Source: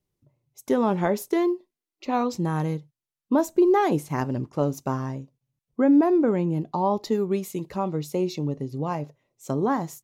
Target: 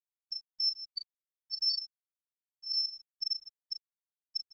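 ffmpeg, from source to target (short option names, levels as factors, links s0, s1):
-filter_complex "[0:a]bandreject=f=276.6:t=h:w=4,bandreject=f=553.2:t=h:w=4,bandreject=f=829.8:t=h:w=4,bandreject=f=1106.4:t=h:w=4,bandreject=f=1383:t=h:w=4,bandreject=f=1659.6:t=h:w=4,bandreject=f=1936.2:t=h:w=4,bandreject=f=2212.8:t=h:w=4,bandreject=f=2489.4:t=h:w=4,bandreject=f=2766:t=h:w=4,bandreject=f=3042.6:t=h:w=4,bandreject=f=3319.2:t=h:w=4,bandreject=f=3595.8:t=h:w=4,bandreject=f=3872.4:t=h:w=4,bandreject=f=4149:t=h:w=4,bandreject=f=4425.6:t=h:w=4,bandreject=f=4702.2:t=h:w=4,bandreject=f=4978.8:t=h:w=4,bandreject=f=5255.4:t=h:w=4,bandreject=f=5532:t=h:w=4,bandreject=f=5808.6:t=h:w=4,bandreject=f=6085.2:t=h:w=4,bandreject=f=6361.8:t=h:w=4,bandreject=f=6638.4:t=h:w=4,bandreject=f=6915:t=h:w=4,bandreject=f=7191.6:t=h:w=4,bandreject=f=7468.2:t=h:w=4,bandreject=f=7744.8:t=h:w=4,bandreject=f=8021.4:t=h:w=4,bandreject=f=8298:t=h:w=4,bandreject=f=8574.6:t=h:w=4,bandreject=f=8851.2:t=h:w=4,bandreject=f=9127.8:t=h:w=4,bandreject=f=9404.4:t=h:w=4,bandreject=f=9681:t=h:w=4,bandreject=f=9957.6:t=h:w=4,bandreject=f=10234.2:t=h:w=4,afftfilt=real='re*gte(hypot(re,im),0.794)':imag='im*gte(hypot(re,im),0.794)':win_size=1024:overlap=0.75,highpass=100,lowpass=f=2400:t=q:w=0.5098,lowpass=f=2400:t=q:w=0.6013,lowpass=f=2400:t=q:w=0.9,lowpass=f=2400:t=q:w=2.563,afreqshift=-2800,lowshelf=f=140:g=-10.5,areverse,acompressor=threshold=0.0447:ratio=20,areverse,afftfilt=real='hypot(re,im)*cos(PI*b)':imag='0':win_size=512:overlap=0.75,asetrate=97461,aresample=44100,asplit=2[s0][s1];[s1]adelay=37,volume=0.447[s2];[s0][s2]amix=inputs=2:normalize=0,asplit=2[s3][s4];[s4]aecho=0:1:156|312|468:0.2|0.0638|0.0204[s5];[s3][s5]amix=inputs=2:normalize=0,afftfilt=real='re*gte(hypot(re,im),0.0631)':imag='im*gte(hypot(re,im),0.0631)':win_size=1024:overlap=0.75" -ar 16000 -c:a pcm_mulaw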